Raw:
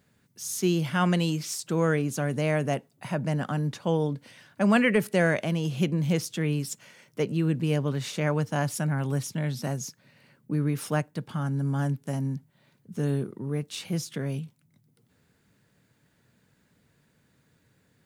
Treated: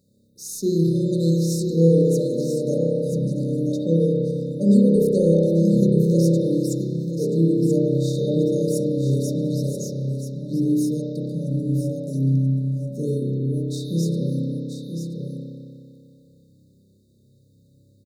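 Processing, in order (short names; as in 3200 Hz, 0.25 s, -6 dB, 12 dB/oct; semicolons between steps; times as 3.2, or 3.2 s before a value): echo 0.981 s -7.5 dB; spring tank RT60 2.4 s, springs 30 ms, chirp 65 ms, DRR -6.5 dB; FFT band-reject 600–3600 Hz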